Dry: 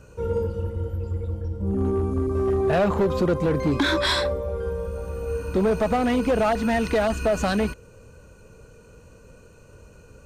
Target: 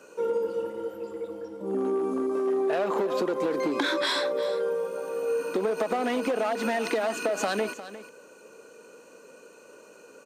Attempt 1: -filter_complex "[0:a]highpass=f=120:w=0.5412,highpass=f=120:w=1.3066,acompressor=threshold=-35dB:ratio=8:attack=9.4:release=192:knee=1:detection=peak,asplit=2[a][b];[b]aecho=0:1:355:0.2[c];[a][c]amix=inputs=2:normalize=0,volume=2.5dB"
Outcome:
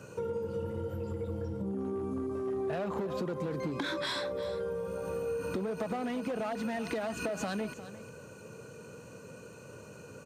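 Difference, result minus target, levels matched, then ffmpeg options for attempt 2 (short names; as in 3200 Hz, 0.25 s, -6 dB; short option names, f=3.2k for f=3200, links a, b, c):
125 Hz band +15.5 dB; compressor: peak gain reduction +8.5 dB
-filter_complex "[0:a]highpass=f=280:w=0.5412,highpass=f=280:w=1.3066,acompressor=threshold=-26dB:ratio=8:attack=9.4:release=192:knee=1:detection=peak,asplit=2[a][b];[b]aecho=0:1:355:0.2[c];[a][c]amix=inputs=2:normalize=0,volume=2.5dB"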